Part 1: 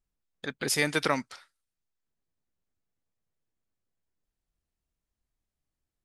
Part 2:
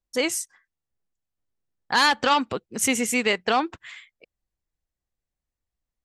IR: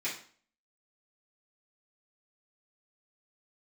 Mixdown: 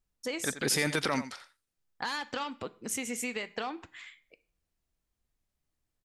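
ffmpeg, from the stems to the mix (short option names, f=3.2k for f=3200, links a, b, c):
-filter_complex "[0:a]alimiter=limit=-19dB:level=0:latency=1:release=13,volume=2dB,asplit=2[a][b];[b]volume=-13dB[c];[1:a]acompressor=threshold=-25dB:ratio=10,adelay=100,volume=-7dB,asplit=2[d][e];[e]volume=-16dB[f];[2:a]atrim=start_sample=2205[g];[f][g]afir=irnorm=-1:irlink=0[h];[c]aecho=0:1:87:1[i];[a][d][h][i]amix=inputs=4:normalize=0"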